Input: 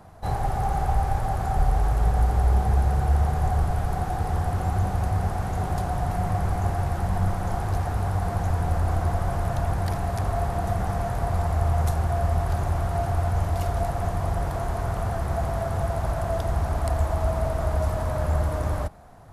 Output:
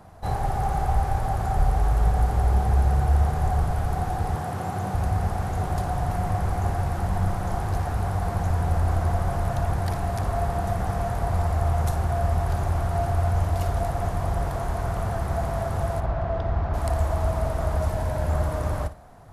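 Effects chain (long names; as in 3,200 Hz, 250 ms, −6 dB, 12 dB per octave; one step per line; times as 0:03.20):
0:04.35–0:04.94: high-pass filter 110 Hz 24 dB per octave
0:16.00–0:16.74: high-frequency loss of the air 250 metres
0:17.89–0:18.29: notch filter 1,200 Hz, Q 5.1
flutter between parallel walls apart 9.9 metres, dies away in 0.26 s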